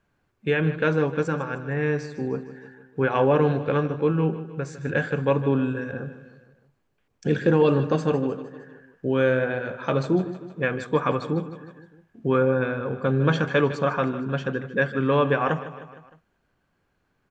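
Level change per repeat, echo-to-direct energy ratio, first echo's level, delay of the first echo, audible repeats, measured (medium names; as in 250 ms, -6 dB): -5.0 dB, -12.5 dB, -14.0 dB, 154 ms, 4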